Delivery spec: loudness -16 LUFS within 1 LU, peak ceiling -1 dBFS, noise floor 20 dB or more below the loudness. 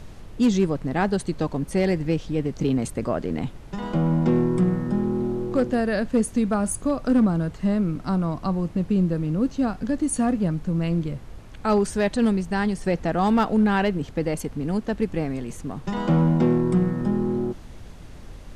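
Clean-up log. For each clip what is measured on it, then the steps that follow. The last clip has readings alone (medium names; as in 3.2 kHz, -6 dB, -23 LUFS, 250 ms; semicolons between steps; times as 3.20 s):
clipped samples 0.6%; clipping level -13.0 dBFS; noise floor -41 dBFS; noise floor target -44 dBFS; loudness -23.5 LUFS; peak level -13.0 dBFS; loudness target -16.0 LUFS
-> clip repair -13 dBFS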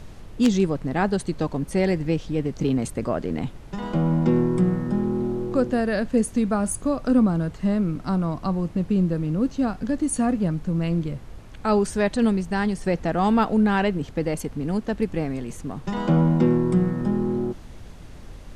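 clipped samples 0.0%; noise floor -41 dBFS; noise floor target -44 dBFS
-> noise print and reduce 6 dB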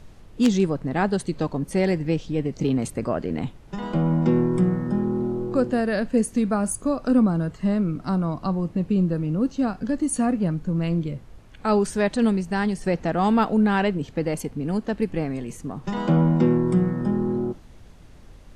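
noise floor -46 dBFS; loudness -23.5 LUFS; peak level -4.0 dBFS; loudness target -16.0 LUFS
-> trim +7.5 dB; peak limiter -1 dBFS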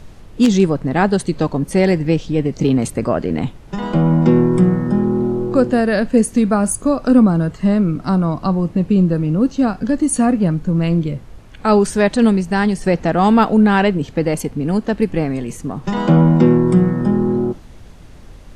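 loudness -16.0 LUFS; peak level -1.0 dBFS; noise floor -39 dBFS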